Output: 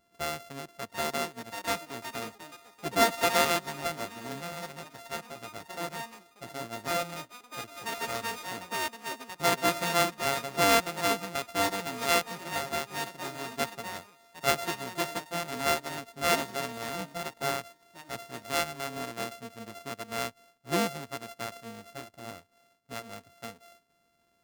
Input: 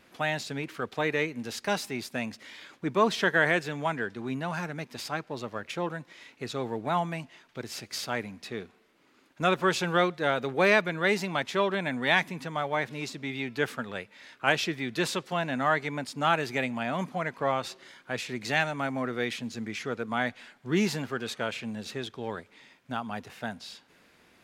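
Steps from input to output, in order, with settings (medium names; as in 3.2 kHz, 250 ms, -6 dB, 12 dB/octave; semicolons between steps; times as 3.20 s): sorted samples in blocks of 64 samples; ever faster or slower copies 790 ms, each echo +5 st, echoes 2, each echo -6 dB; upward expansion 1.5:1, over -40 dBFS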